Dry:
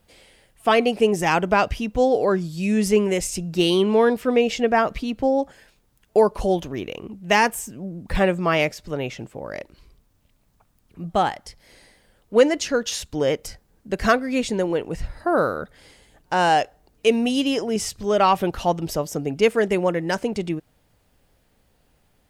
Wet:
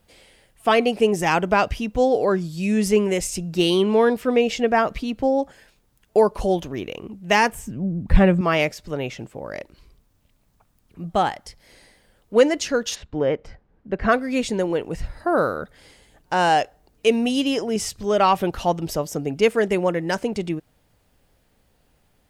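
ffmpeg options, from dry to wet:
ffmpeg -i in.wav -filter_complex "[0:a]asettb=1/sr,asplit=3[link_01][link_02][link_03];[link_01]atrim=end=7.524[link_04];[link_02]atrim=start=7.52:end=8.41,asetpts=PTS-STARTPTS,afade=type=in:duration=0.004:curve=qsin,afade=type=out:start_time=0.886:duration=0.004:curve=qsin,bass=frequency=250:gain=11,treble=frequency=4000:gain=-8[link_05];[link_03]atrim=start=8.406[link_06];[link_04][link_05]acrossfade=duration=0.004:curve1=hsin:curve2=qsin[link_07];[link_07][link_06]acrossfade=duration=0.004:curve1=qsin:curve2=hsin,asplit=3[link_08][link_09][link_10];[link_08]afade=type=out:start_time=12.94:duration=0.02[link_11];[link_09]lowpass=2000,afade=type=in:start_time=12.94:duration=0.02,afade=type=out:start_time=14.11:duration=0.02[link_12];[link_10]afade=type=in:start_time=14.11:duration=0.02[link_13];[link_11][link_12][link_13]amix=inputs=3:normalize=0" out.wav

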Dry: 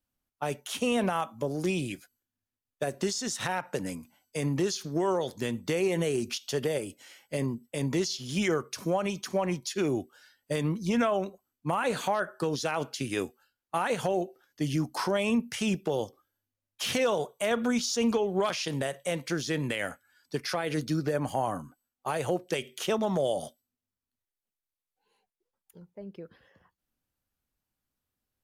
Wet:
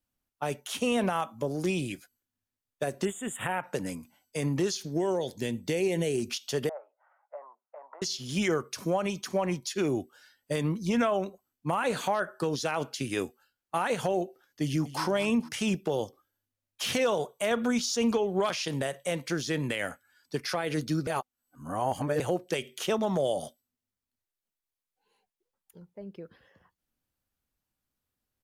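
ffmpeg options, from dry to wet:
ffmpeg -i in.wav -filter_complex "[0:a]asettb=1/sr,asplit=3[link_01][link_02][link_03];[link_01]atrim=end=3.054[link_04];[link_02]atrim=start=3.05:end=3.64,asetpts=PTS-STARTPTS,afade=type=in:duration=0.004:curve=qsin,afade=type=out:start_time=0.586:duration=0.004:curve=qsin,asuperstop=centerf=5000:order=12:qfactor=1.3[link_05];[link_03]atrim=start=3.636[link_06];[link_04][link_05]acrossfade=duration=0.004:curve1=hsin:curve2=qsin[link_07];[link_07][link_06]acrossfade=duration=0.004:curve1=qsin:curve2=hsin,asettb=1/sr,asplit=3[link_08][link_09][link_10];[link_08]atrim=end=4.774[link_11];[link_09]atrim=start=4.77:end=6.19,asetpts=PTS-STARTPTS,afade=type=in:duration=0.004:curve=qsin,afade=type=out:start_time=1.416:duration=0.004:curve=qsin,equalizer=frequency=1200:width=2.6:gain=-13[link_12];[link_10]atrim=start=6.186[link_13];[link_11][link_12]acrossfade=duration=0.004:curve1=hsin:curve2=qsin[link_14];[link_14][link_13]acrossfade=duration=0.004:curve1=qsin:curve2=hsin,asettb=1/sr,asplit=3[link_15][link_16][link_17];[link_15]atrim=end=6.694[link_18];[link_16]atrim=start=6.69:end=8.02,asetpts=PTS-STARTPTS,afade=type=in:duration=0.004:curve=qsin,afade=type=out:start_time=1.326:duration=0.004:curve=qsin,asuperpass=centerf=940:order=8:qfactor=1.2[link_19];[link_17]atrim=start=8.016[link_20];[link_18][link_19]acrossfade=duration=0.004:curve1=hsin:curve2=qsin[link_21];[link_21][link_20]acrossfade=duration=0.004:curve1=qsin:curve2=hsin,asplit=2[link_22][link_23];[link_23]afade=type=in:start_time=14.62:duration=0.01,afade=type=out:start_time=15.02:duration=0.01,aecho=0:1:230|460|690|920:0.223872|0.0895488|0.0358195|0.0143278[link_24];[link_22][link_24]amix=inputs=2:normalize=0,asplit=3[link_25][link_26][link_27];[link_25]atrim=end=21.072[link_28];[link_26]atrim=start=21.068:end=22.202,asetpts=PTS-STARTPTS,areverse[link_29];[link_27]atrim=start=22.198[link_30];[link_28][link_29]acrossfade=duration=0.004:curve1=hsin:curve2=hsin[link_31];[link_31][link_30]acrossfade=duration=0.004:curve1=hsin:curve2=hsin" out.wav

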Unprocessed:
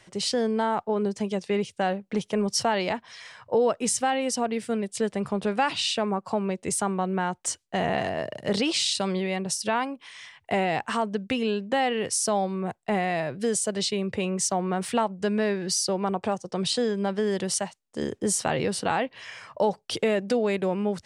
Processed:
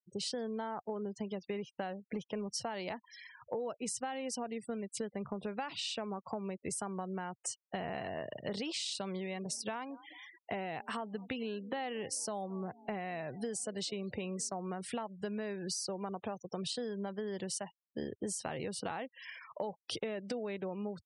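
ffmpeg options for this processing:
ffmpeg -i in.wav -filter_complex "[0:a]asplit=3[link_01][link_02][link_03];[link_01]afade=type=out:start_time=9.31:duration=0.02[link_04];[link_02]asplit=4[link_05][link_06][link_07][link_08];[link_06]adelay=218,afreqshift=38,volume=-24dB[link_09];[link_07]adelay=436,afreqshift=76,volume=-29.4dB[link_10];[link_08]adelay=654,afreqshift=114,volume=-34.7dB[link_11];[link_05][link_09][link_10][link_11]amix=inputs=4:normalize=0,afade=type=in:start_time=9.31:duration=0.02,afade=type=out:start_time=14.54:duration=0.02[link_12];[link_03]afade=type=in:start_time=14.54:duration=0.02[link_13];[link_04][link_12][link_13]amix=inputs=3:normalize=0,afftfilt=real='re*gte(hypot(re,im),0.0126)':imag='im*gte(hypot(re,im),0.0126)':win_size=1024:overlap=0.75,acompressor=threshold=-30dB:ratio=6,volume=-5.5dB" out.wav

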